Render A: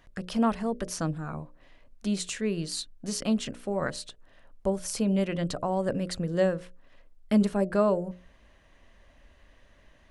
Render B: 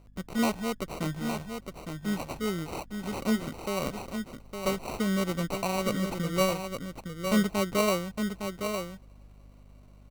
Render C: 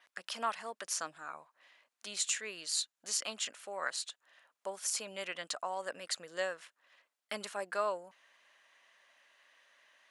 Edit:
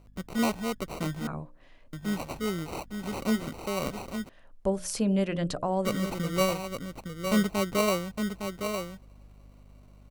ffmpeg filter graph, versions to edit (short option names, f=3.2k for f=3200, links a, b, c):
-filter_complex "[0:a]asplit=2[a][b];[1:a]asplit=3[c][d][e];[c]atrim=end=1.272[f];[a]atrim=start=1.268:end=1.932[g];[d]atrim=start=1.928:end=4.292[h];[b]atrim=start=4.288:end=5.852[i];[e]atrim=start=5.848[j];[f][g]acrossfade=d=0.004:c1=hsin:c2=hsin[k];[k][h]acrossfade=d=0.004:c1=hsin:c2=hsin[l];[l][i]acrossfade=d=0.004:c1=hsin:c2=hsin[m];[m][j]acrossfade=d=0.004:c1=hsin:c2=hsin"